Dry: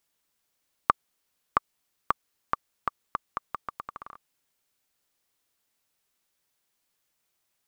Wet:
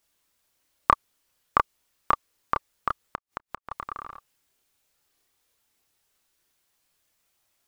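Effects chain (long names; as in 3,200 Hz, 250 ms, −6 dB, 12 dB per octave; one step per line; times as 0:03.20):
multi-voice chorus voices 6, 0.4 Hz, delay 29 ms, depth 1.9 ms
0:03.02–0:03.71: gate with flip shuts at −25 dBFS, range −31 dB
level +7.5 dB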